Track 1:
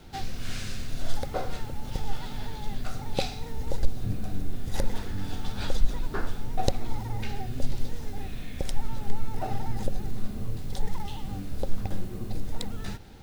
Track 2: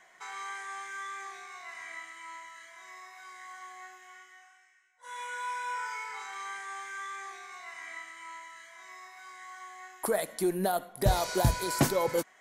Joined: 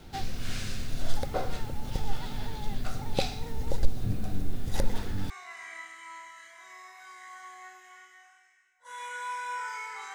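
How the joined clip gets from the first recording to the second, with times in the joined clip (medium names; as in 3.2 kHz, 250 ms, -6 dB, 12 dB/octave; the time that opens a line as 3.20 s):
track 1
5.30 s: go over to track 2 from 1.48 s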